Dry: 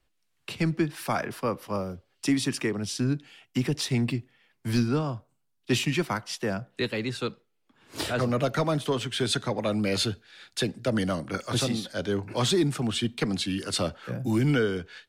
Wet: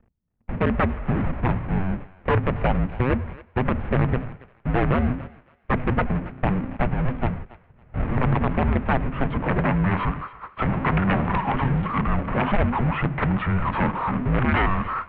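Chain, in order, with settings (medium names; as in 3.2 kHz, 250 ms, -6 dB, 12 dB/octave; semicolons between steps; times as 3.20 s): 10.66–11.31 s: jump at every zero crossing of -32.5 dBFS; low-pass sweep 400 Hz -> 1.4 kHz, 8.95–9.74 s; gate -43 dBFS, range -55 dB; integer overflow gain 16.5 dB; 6.20–6.76 s: de-hum 60.97 Hz, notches 12; power-law waveshaper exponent 0.35; thinning echo 278 ms, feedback 25%, high-pass 1.1 kHz, level -17 dB; mistuned SSB -380 Hz 150–2800 Hz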